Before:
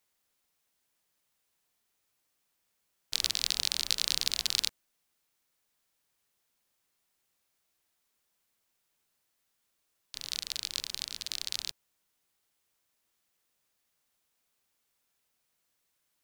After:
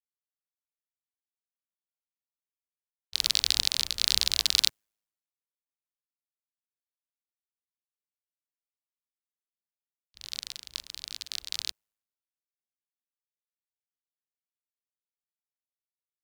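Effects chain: ring modulator 53 Hz; waveshaping leveller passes 1; three bands expanded up and down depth 100%; trim +3.5 dB

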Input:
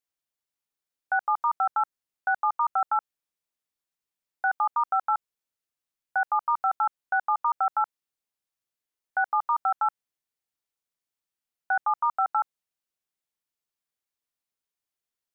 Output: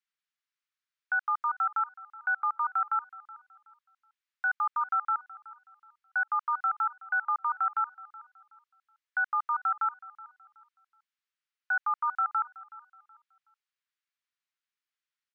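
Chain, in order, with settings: high-pass 1.2 kHz 24 dB/octave; peaking EQ 1.6 kHz +4.5 dB 2.4 oct; peak limiter -21 dBFS, peak gain reduction 3.5 dB; distance through air 96 m; feedback delay 373 ms, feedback 30%, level -19 dB

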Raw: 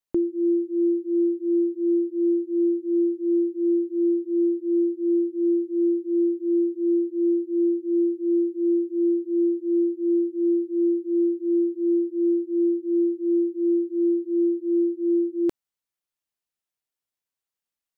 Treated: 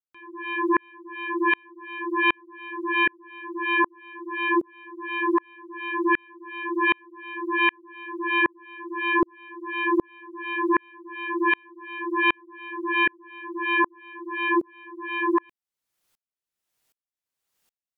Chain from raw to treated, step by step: sine folder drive 14 dB, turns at -16.5 dBFS; sawtooth tremolo in dB swelling 1.3 Hz, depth 39 dB; trim +2.5 dB

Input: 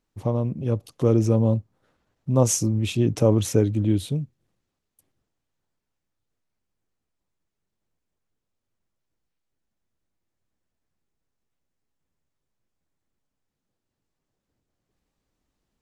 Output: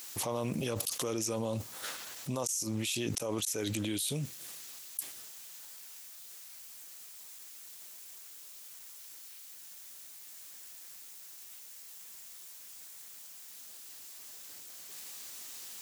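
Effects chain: differentiator; inverted gate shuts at -24 dBFS, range -33 dB; level flattener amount 100%; trim +1 dB

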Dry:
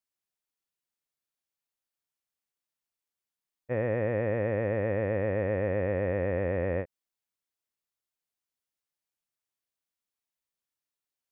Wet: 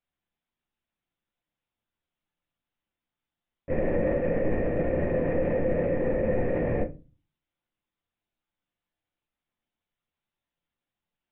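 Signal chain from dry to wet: LPC vocoder at 8 kHz whisper; peak limiter -28 dBFS, peak gain reduction 10.5 dB; peaking EQ 250 Hz +5.5 dB 2.2 oct; simulated room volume 120 m³, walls furnished, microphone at 0.8 m; trim +4 dB

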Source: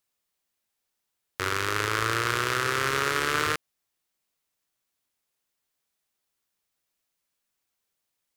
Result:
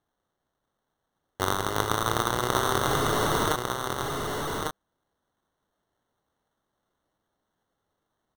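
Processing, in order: 2.87–3.46 s: one-bit comparator; sample-and-hold 18×; delay 1150 ms -4.5 dB

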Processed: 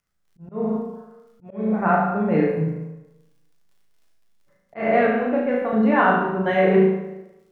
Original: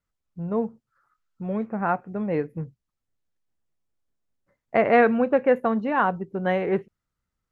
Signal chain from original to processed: crackle 33 per s -55 dBFS; 4.88–5.73 s: feedback comb 61 Hz, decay 1.9 s, harmonics all, mix 60%; flutter echo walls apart 6.3 m, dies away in 0.56 s; plate-style reverb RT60 1 s, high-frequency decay 0.8×, DRR -0.5 dB; slow attack 269 ms; trim +1 dB

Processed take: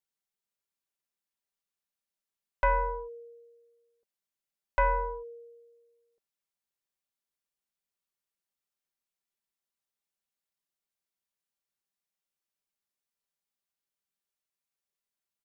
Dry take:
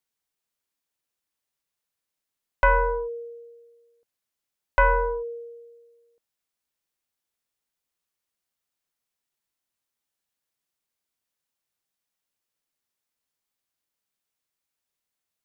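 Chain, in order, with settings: comb 5.1 ms, depth 44%; trim -8 dB

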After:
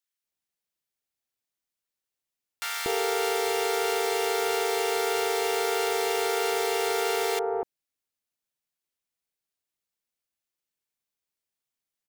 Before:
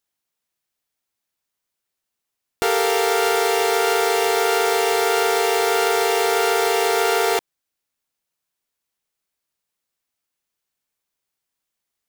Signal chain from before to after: bands offset in time highs, lows 240 ms, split 1.1 kHz; trim -7 dB

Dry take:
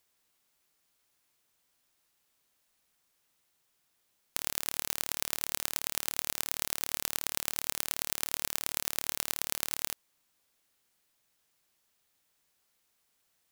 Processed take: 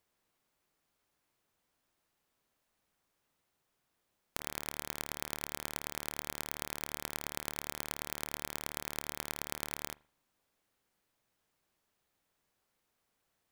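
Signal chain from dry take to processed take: treble shelf 2.1 kHz -11 dB; on a send: reverberation, pre-delay 40 ms, DRR 21 dB; on the sum: trim +2 dB

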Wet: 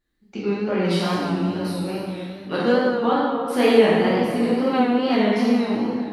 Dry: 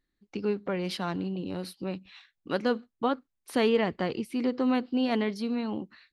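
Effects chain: plate-style reverb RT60 2.3 s, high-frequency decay 0.65×, DRR -9 dB; wow and flutter 60 cents

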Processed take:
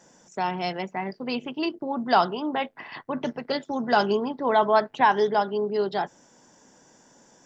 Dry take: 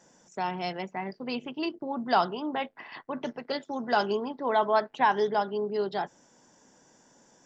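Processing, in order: 2.74–5.01 s: peaking EQ 90 Hz +10 dB 1.5 oct; trim +4 dB

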